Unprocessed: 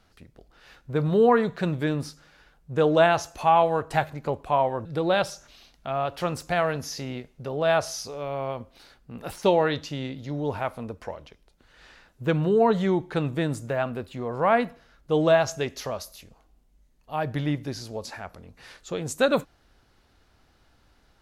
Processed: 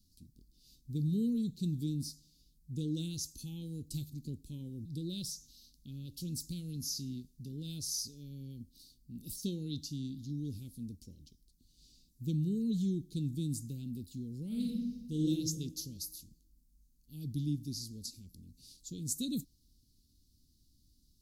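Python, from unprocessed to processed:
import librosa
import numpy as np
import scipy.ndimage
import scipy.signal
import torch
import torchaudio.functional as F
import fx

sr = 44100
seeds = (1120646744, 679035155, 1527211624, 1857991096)

y = fx.reverb_throw(x, sr, start_s=14.47, length_s=0.81, rt60_s=1.2, drr_db=-3.5)
y = scipy.signal.sosfilt(scipy.signal.ellip(3, 1.0, 50, [270.0, 4400.0], 'bandstop', fs=sr, output='sos'), y)
y = fx.high_shelf(y, sr, hz=8000.0, db=12.0)
y = F.gain(torch.from_numpy(y), -5.5).numpy()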